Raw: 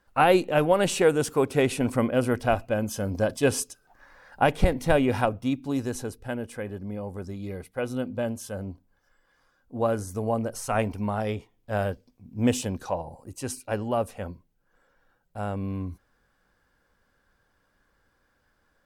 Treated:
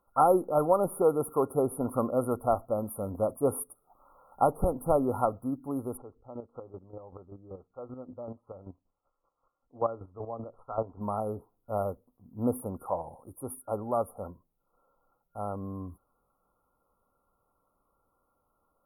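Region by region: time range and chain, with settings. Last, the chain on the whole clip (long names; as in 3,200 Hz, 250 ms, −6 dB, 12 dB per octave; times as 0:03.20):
0:05.97–0:11.01: low-pass filter 3,300 Hz 24 dB per octave + notch filter 210 Hz, Q 5.4 + square-wave tremolo 5.2 Hz, depth 65%, duty 25%
whole clip: low-shelf EQ 370 Hz −9 dB; brick-wall band-stop 1,400–9,400 Hz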